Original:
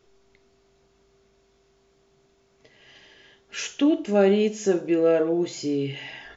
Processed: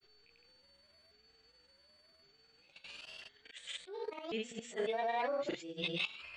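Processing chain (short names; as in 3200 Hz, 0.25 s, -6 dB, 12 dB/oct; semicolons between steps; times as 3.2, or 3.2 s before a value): repeated pitch sweeps +9 st, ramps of 1.089 s; band shelf 2200 Hz +10 dB; whine 4500 Hz -55 dBFS; level quantiser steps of 16 dB; auto swell 0.323 s; grains, pitch spread up and down by 0 st; gain -1.5 dB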